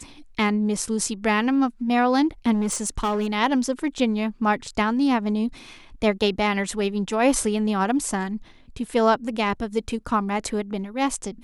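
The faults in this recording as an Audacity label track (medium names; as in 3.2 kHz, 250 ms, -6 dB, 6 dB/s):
2.530000	3.280000	clipped -19.5 dBFS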